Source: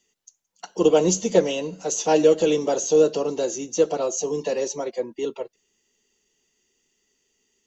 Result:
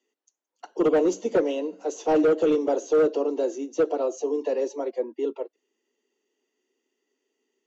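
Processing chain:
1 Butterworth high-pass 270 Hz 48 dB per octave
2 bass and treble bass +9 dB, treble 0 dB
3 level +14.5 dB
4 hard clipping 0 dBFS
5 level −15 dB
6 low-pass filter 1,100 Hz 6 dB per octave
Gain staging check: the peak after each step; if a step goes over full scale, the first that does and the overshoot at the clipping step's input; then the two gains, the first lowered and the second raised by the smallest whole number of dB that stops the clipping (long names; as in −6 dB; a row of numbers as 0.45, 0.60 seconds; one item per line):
−5.5, −4.5, +10.0, 0.0, −15.0, −15.0 dBFS
step 3, 10.0 dB
step 3 +4.5 dB, step 5 −5 dB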